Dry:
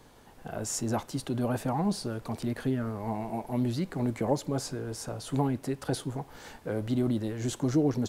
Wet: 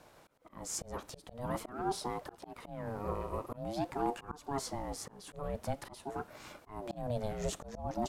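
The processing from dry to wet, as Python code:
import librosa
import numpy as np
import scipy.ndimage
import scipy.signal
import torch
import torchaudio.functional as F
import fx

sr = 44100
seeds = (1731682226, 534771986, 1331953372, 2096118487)

y = fx.auto_swell(x, sr, attack_ms=290.0)
y = fx.ring_lfo(y, sr, carrier_hz=450.0, swing_pct=35, hz=0.47)
y = y * librosa.db_to_amplitude(-1.0)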